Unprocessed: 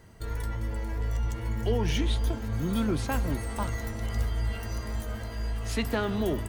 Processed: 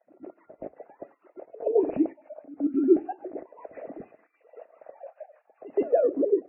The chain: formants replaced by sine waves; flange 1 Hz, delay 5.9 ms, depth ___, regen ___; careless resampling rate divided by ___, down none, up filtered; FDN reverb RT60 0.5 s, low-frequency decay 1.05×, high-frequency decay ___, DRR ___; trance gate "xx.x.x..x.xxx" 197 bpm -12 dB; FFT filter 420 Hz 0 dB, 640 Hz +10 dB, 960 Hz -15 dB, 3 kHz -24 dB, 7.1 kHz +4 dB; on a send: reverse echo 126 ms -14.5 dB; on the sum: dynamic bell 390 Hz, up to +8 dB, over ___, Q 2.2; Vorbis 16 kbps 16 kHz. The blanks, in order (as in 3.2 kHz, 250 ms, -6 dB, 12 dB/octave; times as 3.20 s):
2 ms, -88%, 8×, 0.45×, 16.5 dB, -42 dBFS